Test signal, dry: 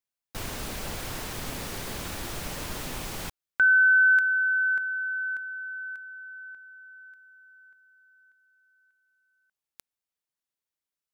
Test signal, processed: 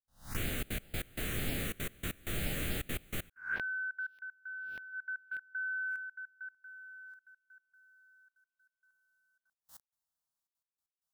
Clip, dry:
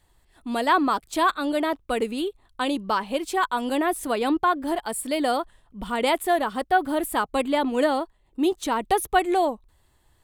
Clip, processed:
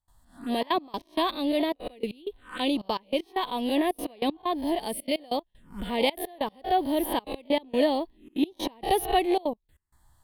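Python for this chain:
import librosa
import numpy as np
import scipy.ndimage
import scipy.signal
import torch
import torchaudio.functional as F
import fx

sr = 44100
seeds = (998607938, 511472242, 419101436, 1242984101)

y = fx.spec_swells(x, sr, rise_s=0.36)
y = fx.env_phaser(y, sr, low_hz=390.0, high_hz=1400.0, full_db=-26.5)
y = fx.step_gate(y, sr, bpm=192, pattern='.xxxxxxx.x..x.', floor_db=-24.0, edge_ms=4.5)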